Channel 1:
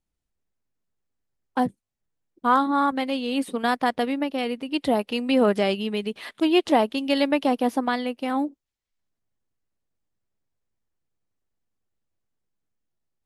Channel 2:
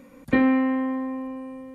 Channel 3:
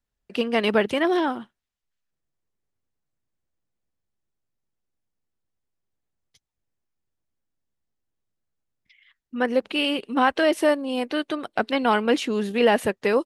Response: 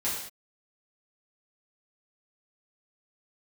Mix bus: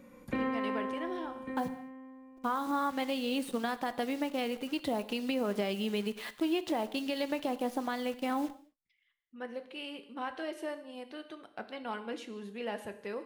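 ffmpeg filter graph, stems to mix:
-filter_complex "[0:a]acompressor=threshold=0.0794:ratio=6,acrusher=bits=8:dc=4:mix=0:aa=0.000001,volume=0.531,asplit=2[s0][s1];[s1]volume=0.119[s2];[1:a]volume=0.376,asplit=3[s3][s4][s5];[s4]volume=0.355[s6];[s5]volume=0.188[s7];[2:a]volume=0.1,asplit=2[s8][s9];[s9]volume=0.211[s10];[3:a]atrim=start_sample=2205[s11];[s2][s6][s10]amix=inputs=3:normalize=0[s12];[s12][s11]afir=irnorm=-1:irlink=0[s13];[s7]aecho=0:1:1144:1[s14];[s0][s3][s8][s13][s14]amix=inputs=5:normalize=0,alimiter=limit=0.075:level=0:latency=1:release=189"

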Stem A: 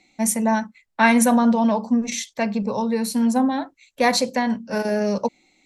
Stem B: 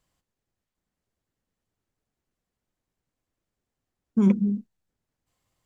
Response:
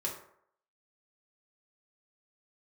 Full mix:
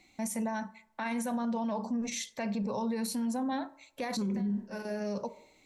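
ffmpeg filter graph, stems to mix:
-filter_complex "[0:a]alimiter=limit=0.178:level=0:latency=1:release=125,acompressor=threshold=0.0708:ratio=2,volume=0.596,asplit=2[s0][s1];[s1]volume=0.141[s2];[1:a]alimiter=limit=0.0944:level=0:latency=1:release=15,volume=0.891,asplit=3[s3][s4][s5];[s4]volume=0.473[s6];[s5]apad=whole_len=249181[s7];[s0][s7]sidechaincompress=threshold=0.00562:ratio=6:attack=16:release=499[s8];[2:a]atrim=start_sample=2205[s9];[s2][s6]amix=inputs=2:normalize=0[s10];[s10][s9]afir=irnorm=-1:irlink=0[s11];[s8][s3][s11]amix=inputs=3:normalize=0,alimiter=level_in=1.33:limit=0.0631:level=0:latency=1:release=39,volume=0.75"

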